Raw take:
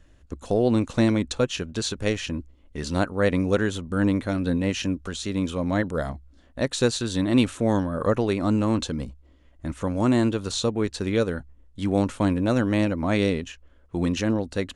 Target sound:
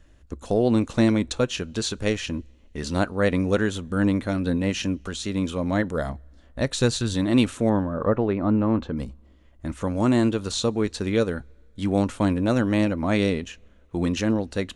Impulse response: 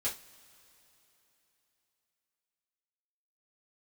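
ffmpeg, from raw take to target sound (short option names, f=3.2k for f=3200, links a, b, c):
-filter_complex "[0:a]asettb=1/sr,asplit=3[a][b][c];[a]atrim=end=6.114[d];[b]atrim=start=6.11:end=7.14,asetpts=PTS-STARTPTS,afade=t=in:d=0.004:c=qsin,afade=t=out:st=1.026:d=0.004:c=qsin,asubboost=boost=5.5:cutoff=190[e];[c]atrim=start=7.136[f];[d][e]acrossfade=d=0.004:c1=hsin:c2=qsin[g];[g][f]acrossfade=d=0.004:c1=qsin:c2=hsin,asettb=1/sr,asplit=3[h][i][j];[h]atrim=end=7.694[k];[i]atrim=start=7.69:end=8.97,asetpts=PTS-STARTPTS,afade=t=in:d=0.004:c=qsin,afade=t=out:st=1.276:d=0.004:c=qsin,lowpass=1.7k[l];[j]atrim=start=8.966[m];[k][l]acrossfade=d=0.004:c1=hsin:c2=qsin[n];[n][m]acrossfade=d=0.004:c1=qsin:c2=hsin,asplit=2[o][p];[1:a]atrim=start_sample=2205,asetrate=74970,aresample=44100[q];[p][q]afir=irnorm=-1:irlink=0,volume=-15.5dB[r];[o][r]amix=inputs=2:normalize=0"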